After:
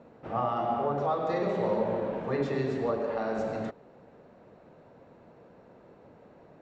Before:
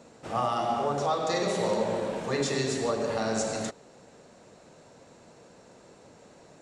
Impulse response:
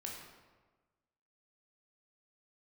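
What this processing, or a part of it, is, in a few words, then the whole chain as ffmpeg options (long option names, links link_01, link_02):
phone in a pocket: -filter_complex "[0:a]asettb=1/sr,asplit=3[link_01][link_02][link_03];[link_01]atrim=end=2.984[link_04];[link_02]atrim=start=2.98:end=3.39,asetpts=PTS-STARTPTS,afade=type=in:duration=0.004:curve=qsin,afade=type=out:start_time=0.406:duration=0.004:curve=qsin,equalizer=frequency=120:width_type=o:width=1.2:gain=-13[link_05];[link_03]atrim=start=3.386[link_06];[link_04][link_05]acrossfade=duration=0.004:curve1=hsin:curve2=qsin[link_07];[link_07][link_06]acrossfade=duration=0.004:curve1=qsin:curve2=hsin,lowpass=3000,highshelf=frequency=2400:gain=-11.5"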